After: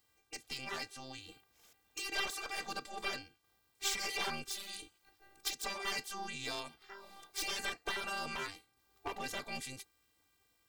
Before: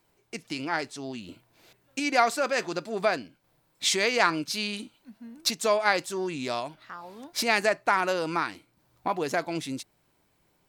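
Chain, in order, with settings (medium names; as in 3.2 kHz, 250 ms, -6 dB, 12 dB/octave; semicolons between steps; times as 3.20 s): robot voice 395 Hz; hard clipper -23 dBFS, distortion -8 dB; spectral gate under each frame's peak -10 dB weak; trim +1 dB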